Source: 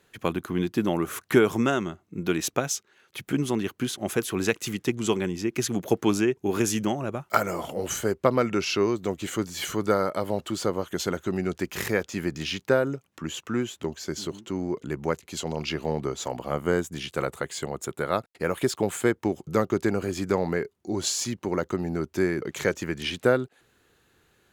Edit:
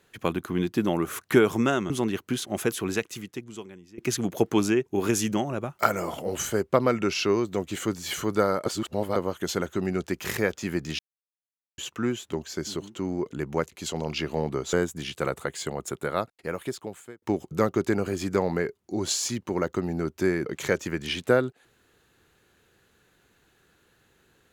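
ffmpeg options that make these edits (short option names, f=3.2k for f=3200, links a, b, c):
-filter_complex "[0:a]asplit=9[a][b][c][d][e][f][g][h][i];[a]atrim=end=1.902[j];[b]atrim=start=3.408:end=5.49,asetpts=PTS-STARTPTS,afade=t=out:st=0.842:d=1.24:c=qua:silence=0.0891251[k];[c]atrim=start=5.49:end=10.172,asetpts=PTS-STARTPTS,afade=t=in:d=0.004:c=hsin:silence=0.0891251[l];[d]atrim=start=10.168:end=10.672,asetpts=PTS-STARTPTS,areverse[m];[e]atrim=start=10.668:end=12.5,asetpts=PTS-STARTPTS,afade=t=out:st=1.828:d=0.004:c=hsin[n];[f]atrim=start=12.5:end=13.29,asetpts=PTS-STARTPTS,volume=0[o];[g]atrim=start=13.29:end=16.242,asetpts=PTS-STARTPTS,afade=t=in:d=0.004:c=hsin[p];[h]atrim=start=16.688:end=19.18,asetpts=PTS-STARTPTS,afade=t=out:st=1.232:d=1.26[q];[i]atrim=start=19.18,asetpts=PTS-STARTPTS,afade=t=in:d=0.004:c=hsin[r];[k][l]concat=n=2:v=0:a=1[s];[j][s]acrossfade=d=0.004:c1=hsin:c2=hsin[t];[t][m]acrossfade=d=0.004:c1=hsin:c2=hsin[u];[n][o][p]concat=n=3:v=0:a=1[v];[u][v]acrossfade=d=0.004:c1=hsin:c2=hsin[w];[q][r]concat=n=2:v=0:a=1[x];[w][x]acrossfade=d=0.004:c1=hsin:c2=hsin"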